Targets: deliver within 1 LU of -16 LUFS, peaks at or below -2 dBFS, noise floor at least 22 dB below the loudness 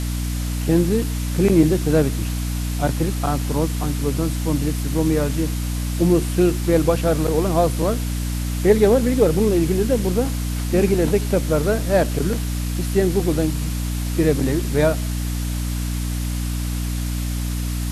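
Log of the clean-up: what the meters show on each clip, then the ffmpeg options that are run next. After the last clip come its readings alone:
hum 60 Hz; harmonics up to 300 Hz; hum level -21 dBFS; noise floor -24 dBFS; noise floor target -43 dBFS; loudness -20.5 LUFS; peak -3.0 dBFS; loudness target -16.0 LUFS
-> -af "bandreject=f=60:t=h:w=6,bandreject=f=120:t=h:w=6,bandreject=f=180:t=h:w=6,bandreject=f=240:t=h:w=6,bandreject=f=300:t=h:w=6"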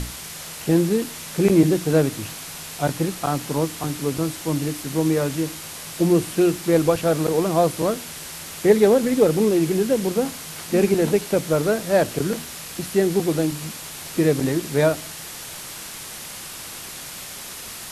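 hum none; noise floor -36 dBFS; noise floor target -44 dBFS
-> -af "afftdn=nr=8:nf=-36"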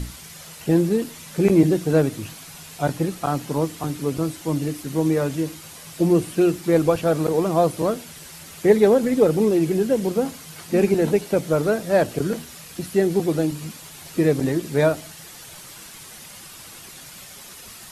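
noise floor -42 dBFS; noise floor target -44 dBFS
-> -af "afftdn=nr=6:nf=-42"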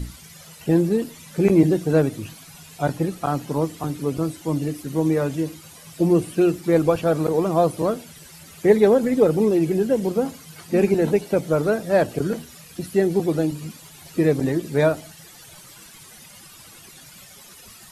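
noise floor -46 dBFS; loudness -21.5 LUFS; peak -3.5 dBFS; loudness target -16.0 LUFS
-> -af "volume=5.5dB,alimiter=limit=-2dB:level=0:latency=1"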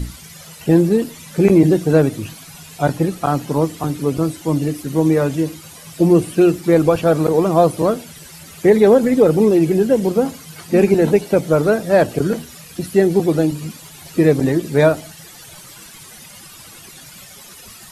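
loudness -16.0 LUFS; peak -2.0 dBFS; noise floor -40 dBFS

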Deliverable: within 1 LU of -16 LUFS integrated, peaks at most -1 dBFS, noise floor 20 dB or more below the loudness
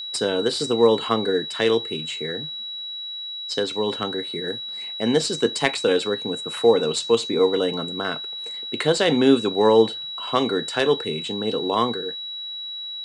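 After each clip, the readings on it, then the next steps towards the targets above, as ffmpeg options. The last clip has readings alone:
steady tone 3900 Hz; tone level -30 dBFS; loudness -22.5 LUFS; peak -2.0 dBFS; loudness target -16.0 LUFS
-> -af "bandreject=f=3.9k:w=30"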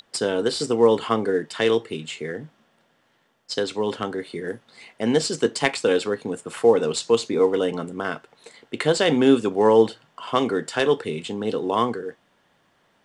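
steady tone none; loudness -22.5 LUFS; peak -2.5 dBFS; loudness target -16.0 LUFS
-> -af "volume=6.5dB,alimiter=limit=-1dB:level=0:latency=1"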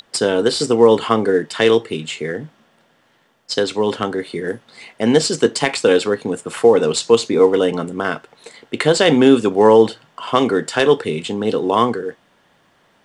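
loudness -16.5 LUFS; peak -1.0 dBFS; noise floor -58 dBFS

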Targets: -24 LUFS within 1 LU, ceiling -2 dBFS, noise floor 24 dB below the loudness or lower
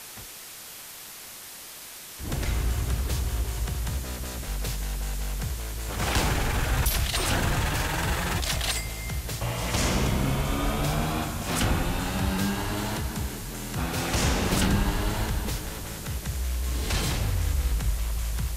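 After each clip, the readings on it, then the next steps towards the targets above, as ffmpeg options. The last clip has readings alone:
noise floor -42 dBFS; noise floor target -52 dBFS; loudness -28.0 LUFS; peak -11.0 dBFS; loudness target -24.0 LUFS
-> -af "afftdn=nr=10:nf=-42"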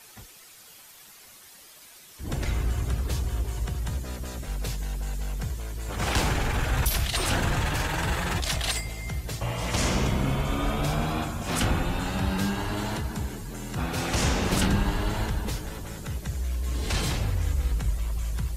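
noise floor -50 dBFS; noise floor target -53 dBFS
-> -af "afftdn=nr=6:nf=-50"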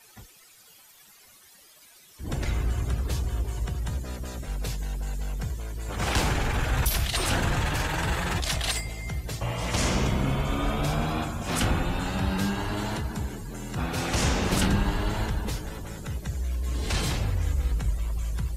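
noise floor -54 dBFS; loudness -28.5 LUFS; peak -11.0 dBFS; loudness target -24.0 LUFS
-> -af "volume=4.5dB"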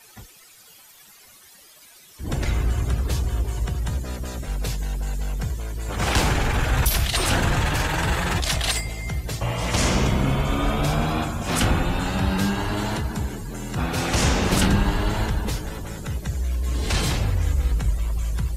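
loudness -24.0 LUFS; peak -6.5 dBFS; noise floor -50 dBFS

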